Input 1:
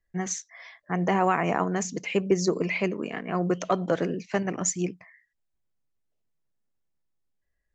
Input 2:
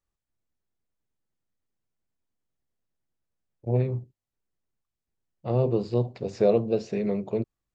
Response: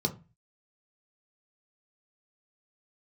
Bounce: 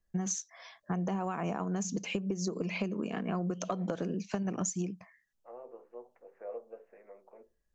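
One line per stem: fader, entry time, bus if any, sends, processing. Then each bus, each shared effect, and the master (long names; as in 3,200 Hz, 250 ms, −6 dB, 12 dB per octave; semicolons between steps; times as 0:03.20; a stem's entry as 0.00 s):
0.0 dB, 0.00 s, no send, thirty-one-band graphic EQ 200 Hz +8 dB, 2,000 Hz −12 dB, 6,300 Hz +4 dB; downward compressor, threshold −24 dBFS, peak gain reduction 10 dB
−14.0 dB, 0.00 s, send −15.5 dB, high-pass filter 480 Hz 24 dB per octave; Butterworth low-pass 2,000 Hz 36 dB per octave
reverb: on, RT60 0.30 s, pre-delay 3 ms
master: downward compressor, threshold −30 dBFS, peak gain reduction 8 dB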